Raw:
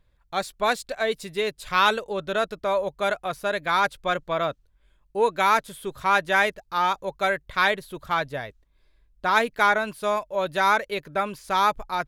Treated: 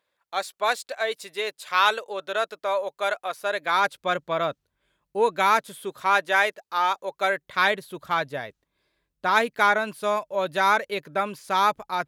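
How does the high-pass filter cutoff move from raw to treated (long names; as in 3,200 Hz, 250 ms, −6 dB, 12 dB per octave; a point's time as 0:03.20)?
0:03.37 490 Hz
0:04.18 130 Hz
0:05.45 130 Hz
0:06.40 380 Hz
0:07.07 380 Hz
0:07.69 140 Hz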